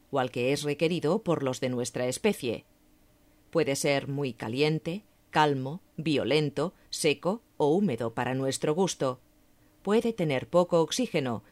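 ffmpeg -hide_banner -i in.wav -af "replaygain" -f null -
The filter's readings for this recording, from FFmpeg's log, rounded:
track_gain = +8.1 dB
track_peak = 0.215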